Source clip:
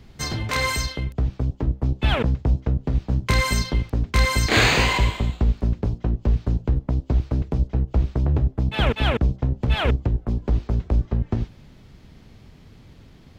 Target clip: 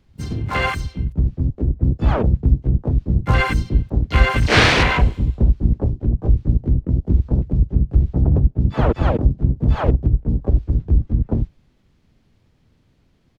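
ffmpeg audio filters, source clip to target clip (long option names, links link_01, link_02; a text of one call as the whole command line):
ffmpeg -i in.wav -filter_complex "[0:a]afwtdn=0.0631,asplit=4[link_01][link_02][link_03][link_04];[link_02]asetrate=33038,aresample=44100,atempo=1.33484,volume=-4dB[link_05];[link_03]asetrate=58866,aresample=44100,atempo=0.749154,volume=-7dB[link_06];[link_04]asetrate=88200,aresample=44100,atempo=0.5,volume=-17dB[link_07];[link_01][link_05][link_06][link_07]amix=inputs=4:normalize=0,volume=2.5dB" out.wav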